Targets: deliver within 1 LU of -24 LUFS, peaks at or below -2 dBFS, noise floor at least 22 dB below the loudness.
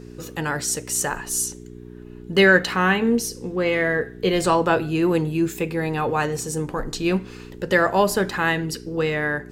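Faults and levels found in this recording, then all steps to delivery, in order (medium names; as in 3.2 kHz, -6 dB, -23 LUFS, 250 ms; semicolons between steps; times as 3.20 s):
hum 60 Hz; highest harmonic 420 Hz; hum level -39 dBFS; loudness -21.5 LUFS; peak level -3.0 dBFS; loudness target -24.0 LUFS
-> de-hum 60 Hz, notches 7; trim -2.5 dB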